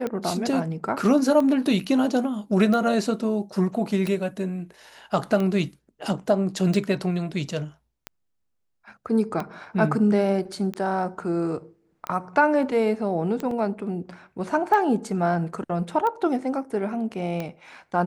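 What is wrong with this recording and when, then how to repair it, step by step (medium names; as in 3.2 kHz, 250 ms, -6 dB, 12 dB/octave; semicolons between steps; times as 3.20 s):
tick 45 rpm -16 dBFS
13.51 s: dropout 3.1 ms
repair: de-click; interpolate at 13.51 s, 3.1 ms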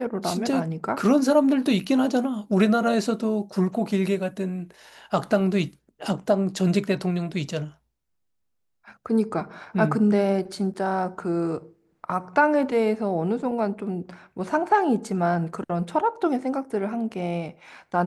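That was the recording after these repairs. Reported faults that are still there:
nothing left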